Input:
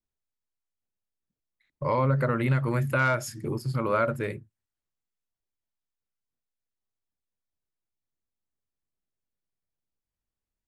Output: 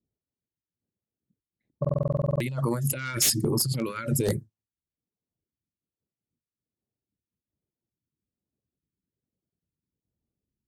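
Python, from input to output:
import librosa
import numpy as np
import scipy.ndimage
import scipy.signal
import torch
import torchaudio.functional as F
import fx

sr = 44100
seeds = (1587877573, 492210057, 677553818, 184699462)

y = fx.dereverb_blind(x, sr, rt60_s=0.51)
y = fx.over_compress(y, sr, threshold_db=-34.0, ratio=-1.0)
y = scipy.signal.sosfilt(scipy.signal.butter(2, 95.0, 'highpass', fs=sr, output='sos'), y)
y = fx.high_shelf(y, sr, hz=3000.0, db=11.5)
y = 10.0 ** (-22.0 / 20.0) * (np.abs((y / 10.0 ** (-22.0 / 20.0) + 3.0) % 4.0 - 2.0) - 1.0)
y = fx.env_lowpass(y, sr, base_hz=390.0, full_db=-29.5)
y = fx.phaser_stages(y, sr, stages=2, low_hz=680.0, high_hz=2700.0, hz=1.2, feedback_pct=5)
y = fx.buffer_glitch(y, sr, at_s=(1.8,), block=2048, repeats=12)
y = y * 10.0 ** (7.5 / 20.0)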